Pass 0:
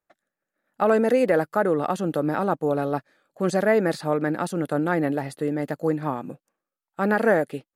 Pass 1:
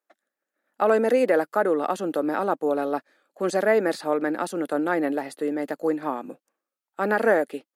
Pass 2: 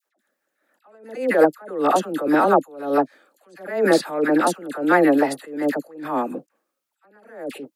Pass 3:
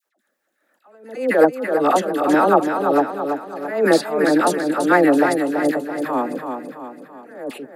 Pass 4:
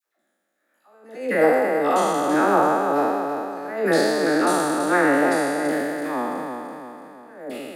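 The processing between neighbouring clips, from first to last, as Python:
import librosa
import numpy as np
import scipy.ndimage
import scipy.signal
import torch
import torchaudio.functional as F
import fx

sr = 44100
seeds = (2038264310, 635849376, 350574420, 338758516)

y1 = scipy.signal.sosfilt(scipy.signal.butter(4, 240.0, 'highpass', fs=sr, output='sos'), x)
y2 = fx.dispersion(y1, sr, late='lows', ms=63.0, hz=1100.0)
y2 = fx.attack_slew(y2, sr, db_per_s=100.0)
y2 = y2 * 10.0 ** (9.0 / 20.0)
y3 = fx.echo_feedback(y2, sr, ms=333, feedback_pct=48, wet_db=-6.5)
y3 = y3 * 10.0 ** (1.5 / 20.0)
y4 = fx.spec_trails(y3, sr, decay_s=2.19)
y4 = y4 * 10.0 ** (-7.0 / 20.0)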